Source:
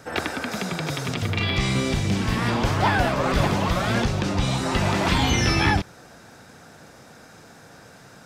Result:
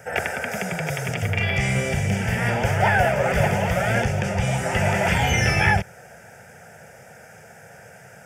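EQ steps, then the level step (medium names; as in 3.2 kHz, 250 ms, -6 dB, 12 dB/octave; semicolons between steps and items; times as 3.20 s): high-pass 84 Hz; static phaser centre 1.1 kHz, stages 6; +5.0 dB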